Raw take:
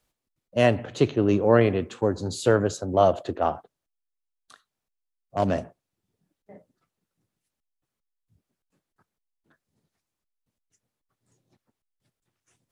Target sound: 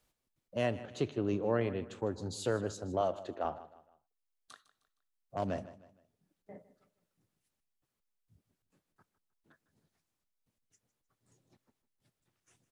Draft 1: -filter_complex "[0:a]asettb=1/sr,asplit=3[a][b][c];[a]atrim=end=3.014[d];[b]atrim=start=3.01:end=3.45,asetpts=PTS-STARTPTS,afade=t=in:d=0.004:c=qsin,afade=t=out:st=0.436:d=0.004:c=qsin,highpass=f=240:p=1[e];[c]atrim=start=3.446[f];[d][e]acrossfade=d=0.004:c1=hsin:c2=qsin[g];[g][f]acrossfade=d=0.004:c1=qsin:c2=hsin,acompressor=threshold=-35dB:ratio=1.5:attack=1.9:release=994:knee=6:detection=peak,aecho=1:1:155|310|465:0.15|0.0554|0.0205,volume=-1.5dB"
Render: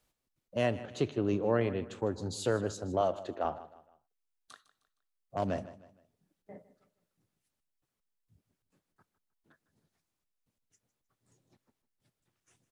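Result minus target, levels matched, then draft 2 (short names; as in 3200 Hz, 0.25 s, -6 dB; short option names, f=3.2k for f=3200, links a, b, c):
compressor: peak gain reduction -2.5 dB
-filter_complex "[0:a]asettb=1/sr,asplit=3[a][b][c];[a]atrim=end=3.014[d];[b]atrim=start=3.01:end=3.45,asetpts=PTS-STARTPTS,afade=t=in:d=0.004:c=qsin,afade=t=out:st=0.436:d=0.004:c=qsin,highpass=f=240:p=1[e];[c]atrim=start=3.446[f];[d][e]acrossfade=d=0.004:c1=hsin:c2=qsin[g];[g][f]acrossfade=d=0.004:c1=qsin:c2=hsin,acompressor=threshold=-42.5dB:ratio=1.5:attack=1.9:release=994:knee=6:detection=peak,aecho=1:1:155|310|465:0.15|0.0554|0.0205,volume=-1.5dB"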